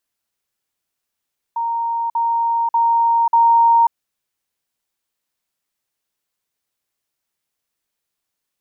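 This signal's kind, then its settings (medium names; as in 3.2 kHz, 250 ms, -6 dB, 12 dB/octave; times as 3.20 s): level ladder 928 Hz -18 dBFS, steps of 3 dB, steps 4, 0.54 s 0.05 s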